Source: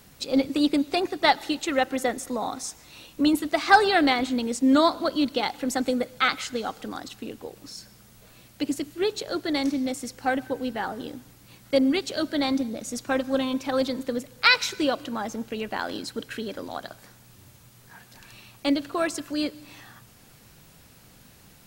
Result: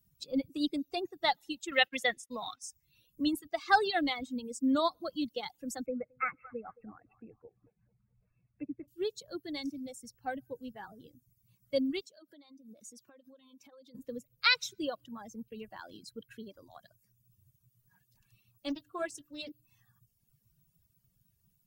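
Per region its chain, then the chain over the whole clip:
1.71–2.62 expander -31 dBFS + bell 2700 Hz +14 dB 2 oct
5.86–8.88 brick-wall FIR low-pass 2700 Hz + narrowing echo 0.219 s, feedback 49%, band-pass 810 Hz, level -9 dB
12.01–13.95 HPF 200 Hz + compressor 20:1, threshold -33 dBFS
18.68–19.52 notches 50/100/150/200/250/300/350/400/450/500 Hz + doubler 20 ms -10 dB + Doppler distortion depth 0.33 ms
whole clip: per-bin expansion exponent 1.5; reverb removal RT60 0.62 s; dynamic EQ 3600 Hz, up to +4 dB, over -42 dBFS, Q 2; gain -7.5 dB

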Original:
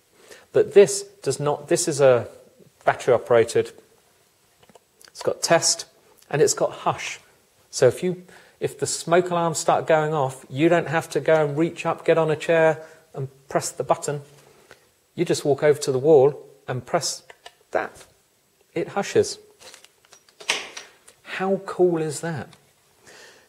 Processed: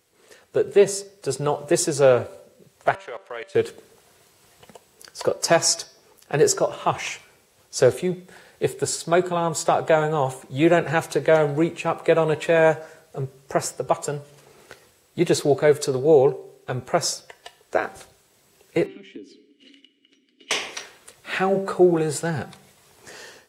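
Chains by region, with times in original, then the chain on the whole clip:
2.95–3.55 block floating point 7-bit + level quantiser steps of 21 dB + band-pass 2500 Hz, Q 0.77
18.86–20.51 vowel filter i + compressor 3:1, threshold -53 dBFS + small resonant body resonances 290/2900 Hz, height 13 dB, ringing for 30 ms
whole clip: de-hum 193.8 Hz, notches 31; AGC gain up to 9.5 dB; gain -4.5 dB

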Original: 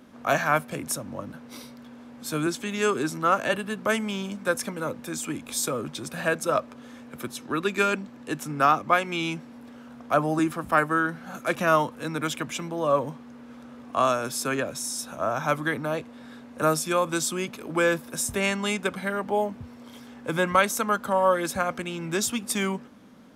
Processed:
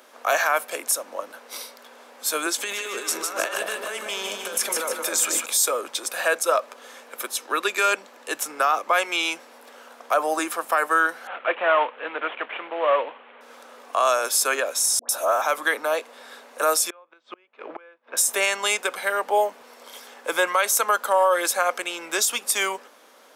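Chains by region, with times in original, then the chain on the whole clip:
2.58–5.46 negative-ratio compressor -33 dBFS + split-band echo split 800 Hz, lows 0.22 s, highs 0.152 s, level -4.5 dB
11.27–13.41 CVSD 16 kbps + bell 150 Hz -5.5 dB 1.5 oct
14.99–15.42 high shelf 9500 Hz +11.5 dB + dispersion highs, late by 0.101 s, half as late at 1100 Hz
16.9–18.17 LPF 2800 Hz 24 dB/oct + flipped gate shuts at -23 dBFS, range -32 dB
whole clip: HPF 460 Hz 24 dB/oct; high shelf 6000 Hz +7.5 dB; limiter -16 dBFS; gain +6 dB

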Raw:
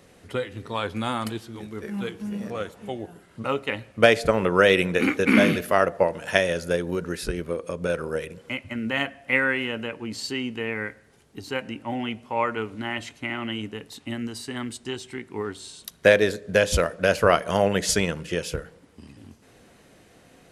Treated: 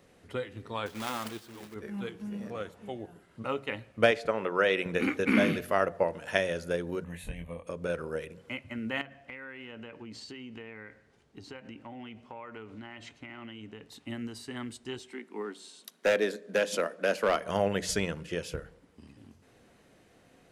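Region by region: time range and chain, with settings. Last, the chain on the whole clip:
0.86–1.76 block floating point 3-bit + low shelf 170 Hz -10 dB
4.11–4.86 HPF 370 Hz 6 dB/oct + high shelf 7400 Hz -11.5 dB
7.04–7.67 fixed phaser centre 1400 Hz, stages 6 + doubler 24 ms -5 dB
9.01–13.89 LPF 7200 Hz + compressor 8:1, threshold -33 dBFS
14.99–17.46 steep high-pass 190 Hz 48 dB/oct + hard clip -12.5 dBFS
whole clip: bell 12000 Hz -3.5 dB 2.3 oct; de-hum 45.46 Hz, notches 4; gain -6.5 dB

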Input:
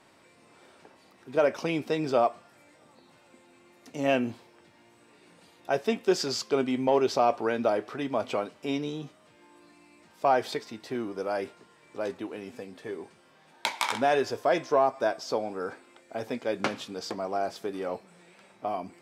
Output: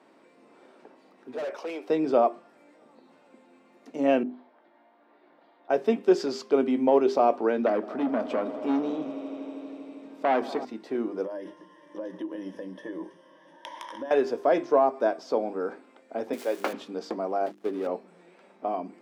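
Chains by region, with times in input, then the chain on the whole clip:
1.34–1.9 HPF 450 Hz 24 dB/oct + overloaded stage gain 32.5 dB
4.23–5.7 speaker cabinet 380–3500 Hz, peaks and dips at 460 Hz -9 dB, 670 Hz +5 dB, 2600 Hz -10 dB + compressor 2:1, threshold -55 dBFS
7.66–10.65 bell 240 Hz +8 dB 0.45 oct + swelling echo 80 ms, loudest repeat 5, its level -18 dB + core saturation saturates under 1300 Hz
11.24–14.11 ripple EQ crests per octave 1.2, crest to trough 17 dB + compressor 16:1, threshold -34 dBFS
16.33–16.73 switching spikes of -25.5 dBFS + HPF 400 Hz
17.46–17.87 switching dead time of 0.18 ms + three-band expander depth 70%
whole clip: HPF 240 Hz 24 dB/oct; tilt -3.5 dB/oct; notches 50/100/150/200/250/300/350/400 Hz

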